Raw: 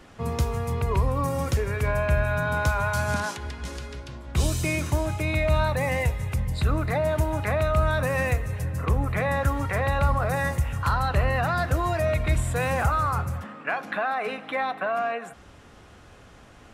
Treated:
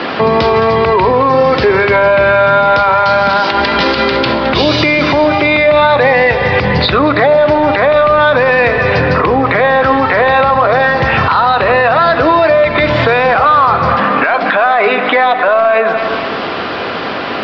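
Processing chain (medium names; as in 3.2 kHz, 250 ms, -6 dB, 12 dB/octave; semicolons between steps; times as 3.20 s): high-pass 300 Hz 12 dB/octave; in parallel at -8.5 dB: hard clipper -27.5 dBFS, distortion -10 dB; on the sum: speed mistake 25 fps video run at 24 fps; steep low-pass 4.9 kHz 72 dB/octave; on a send: echo whose repeats swap between lows and highs 108 ms, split 870 Hz, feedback 64%, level -12.5 dB; on the sum: compression 5:1, threshold -38 dBFS, peak gain reduction 15.5 dB; loudness maximiser +32.5 dB; trim -1 dB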